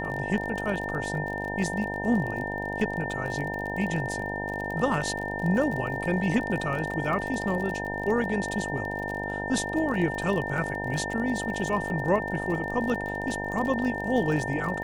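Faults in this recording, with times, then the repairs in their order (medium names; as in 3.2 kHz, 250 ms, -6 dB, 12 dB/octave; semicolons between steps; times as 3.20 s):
buzz 50 Hz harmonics 19 -34 dBFS
crackle 37 per s -32 dBFS
whine 1.8 kHz -33 dBFS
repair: de-click; de-hum 50 Hz, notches 19; band-stop 1.8 kHz, Q 30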